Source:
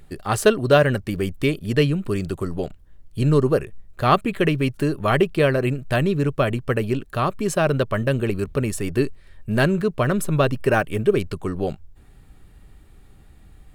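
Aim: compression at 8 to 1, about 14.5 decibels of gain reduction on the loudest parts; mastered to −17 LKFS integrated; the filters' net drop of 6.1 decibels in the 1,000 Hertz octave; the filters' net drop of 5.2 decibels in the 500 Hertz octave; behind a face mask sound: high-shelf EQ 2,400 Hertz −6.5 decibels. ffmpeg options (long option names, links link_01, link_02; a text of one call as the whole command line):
ffmpeg -i in.wav -af "equalizer=frequency=500:width_type=o:gain=-5,equalizer=frequency=1000:width_type=o:gain=-5.5,acompressor=threshold=-30dB:ratio=8,highshelf=frequency=2400:gain=-6.5,volume=18.5dB" out.wav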